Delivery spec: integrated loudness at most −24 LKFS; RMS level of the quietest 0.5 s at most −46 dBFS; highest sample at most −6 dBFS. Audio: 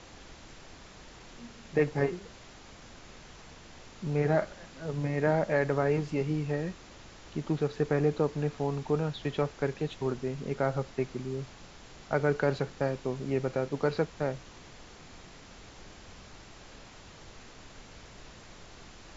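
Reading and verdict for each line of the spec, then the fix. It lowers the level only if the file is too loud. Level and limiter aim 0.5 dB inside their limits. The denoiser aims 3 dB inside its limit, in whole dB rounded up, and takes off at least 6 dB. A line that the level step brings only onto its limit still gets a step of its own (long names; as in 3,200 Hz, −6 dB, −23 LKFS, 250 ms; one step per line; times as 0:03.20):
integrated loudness −31.0 LKFS: in spec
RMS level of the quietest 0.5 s −50 dBFS: in spec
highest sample −13.0 dBFS: in spec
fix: no processing needed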